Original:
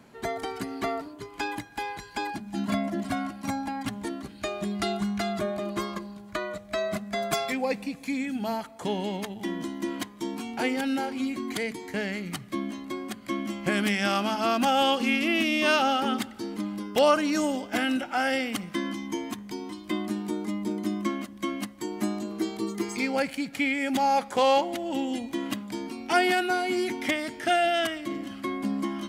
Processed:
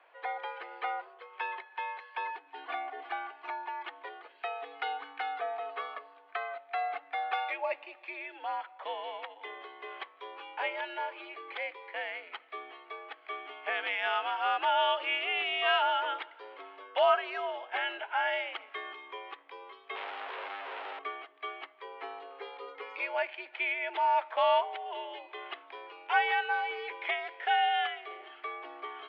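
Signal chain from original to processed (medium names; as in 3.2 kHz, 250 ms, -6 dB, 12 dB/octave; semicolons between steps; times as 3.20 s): 19.95–20.99 s: one-bit comparator; mistuned SSB +81 Hz 500–3100 Hz; trim -3 dB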